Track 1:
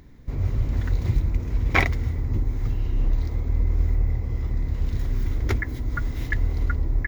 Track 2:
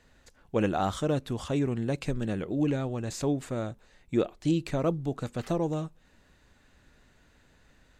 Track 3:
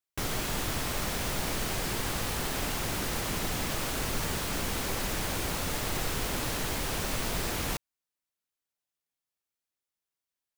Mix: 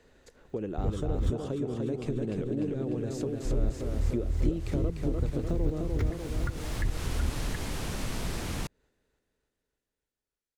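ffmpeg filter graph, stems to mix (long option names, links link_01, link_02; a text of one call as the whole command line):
ffmpeg -i stem1.wav -i stem2.wav -i stem3.wav -filter_complex "[0:a]aeval=exprs='val(0)*pow(10,-19*if(lt(mod(-2.5*n/s,1),2*abs(-2.5)/1000),1-mod(-2.5*n/s,1)/(2*abs(-2.5)/1000),(mod(-2.5*n/s,1)-2*abs(-2.5)/1000)/(1-2*abs(-2.5)/1000))/20)':channel_layout=same,adelay=500,volume=2.5dB,asplit=3[link_01][link_02][link_03];[link_01]atrim=end=1.34,asetpts=PTS-STARTPTS,afade=type=out:start_time=1.336:duration=0.004:curve=hsin[link_04];[link_02]atrim=start=1.34:end=3.45,asetpts=PTS-STARTPTS,volume=0[link_05];[link_03]atrim=start=3.45,asetpts=PTS-STARTPTS,afade=type=in:duration=0.004:curve=hsin[link_06];[link_04][link_05][link_06]concat=n=3:v=0:a=1[link_07];[1:a]equalizer=frequency=420:width_type=o:width=0.83:gain=11,acompressor=threshold=-25dB:ratio=6,volume=-1.5dB,asplit=3[link_08][link_09][link_10];[link_09]volume=-3.5dB[link_11];[2:a]lowpass=11000,dynaudnorm=framelen=210:gausssize=21:maxgain=11dB,adelay=900,volume=-7.5dB,afade=type=in:start_time=3.02:duration=0.44:silence=0.354813[link_12];[link_10]apad=whole_len=505874[link_13];[link_12][link_13]sidechaincompress=threshold=-53dB:ratio=3:attack=16:release=832[link_14];[link_07][link_14]amix=inputs=2:normalize=0,acompressor=threshold=-27dB:ratio=2,volume=0dB[link_15];[link_11]aecho=0:1:298|596|894|1192|1490|1788|2086|2384|2682:1|0.59|0.348|0.205|0.121|0.0715|0.0422|0.0249|0.0147[link_16];[link_08][link_15][link_16]amix=inputs=3:normalize=0,acrossover=split=310[link_17][link_18];[link_18]acompressor=threshold=-41dB:ratio=2.5[link_19];[link_17][link_19]amix=inputs=2:normalize=0" out.wav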